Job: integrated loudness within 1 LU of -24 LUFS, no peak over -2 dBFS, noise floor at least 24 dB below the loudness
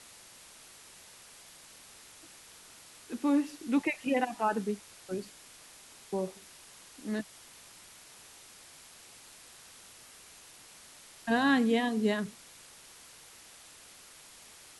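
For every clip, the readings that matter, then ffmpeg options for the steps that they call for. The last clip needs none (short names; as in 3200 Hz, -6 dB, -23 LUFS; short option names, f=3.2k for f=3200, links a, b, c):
noise floor -54 dBFS; noise floor target -56 dBFS; loudness -31.5 LUFS; peak -14.5 dBFS; loudness target -24.0 LUFS
-> -af "afftdn=nr=6:nf=-54"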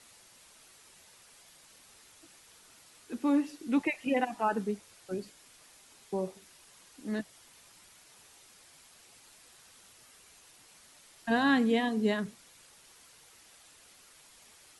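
noise floor -59 dBFS; loudness -31.5 LUFS; peak -14.5 dBFS; loudness target -24.0 LUFS
-> -af "volume=7.5dB"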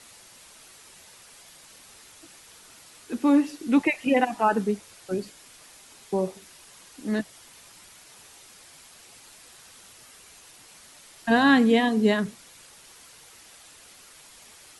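loudness -24.0 LUFS; peak -7.0 dBFS; noise floor -51 dBFS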